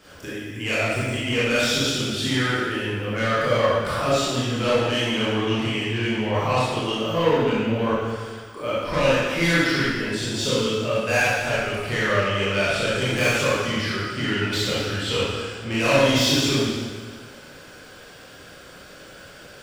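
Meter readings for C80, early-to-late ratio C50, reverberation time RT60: -1.0 dB, -4.0 dB, 1.7 s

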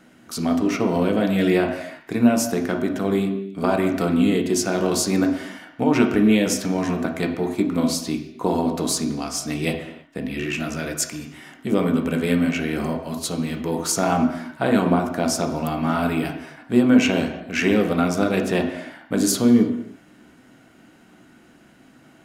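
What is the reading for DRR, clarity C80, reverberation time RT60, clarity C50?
2.5 dB, 9.5 dB, no single decay rate, 7.0 dB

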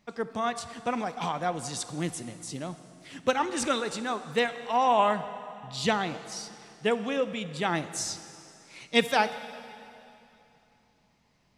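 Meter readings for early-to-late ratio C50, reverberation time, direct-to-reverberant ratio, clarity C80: 12.5 dB, 2.9 s, 11.5 dB, 13.0 dB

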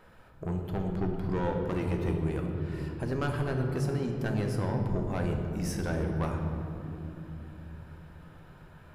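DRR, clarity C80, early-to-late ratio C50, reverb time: 2.0 dB, 5.0 dB, 4.0 dB, 2.9 s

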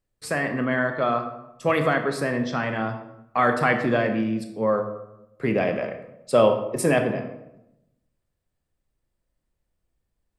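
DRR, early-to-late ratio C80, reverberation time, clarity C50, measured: 6.0 dB, 11.0 dB, 0.85 s, 8.5 dB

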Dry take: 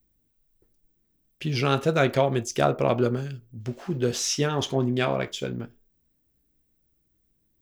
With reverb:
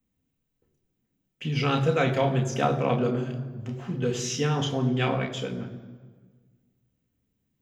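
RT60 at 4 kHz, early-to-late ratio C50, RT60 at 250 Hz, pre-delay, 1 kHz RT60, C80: 1.1 s, 11.5 dB, 1.8 s, 3 ms, 1.5 s, 12.5 dB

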